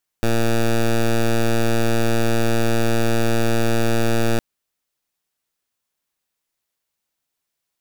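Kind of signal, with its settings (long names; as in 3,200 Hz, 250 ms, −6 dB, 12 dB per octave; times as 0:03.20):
pulse wave 115 Hz, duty 11% −16.5 dBFS 4.16 s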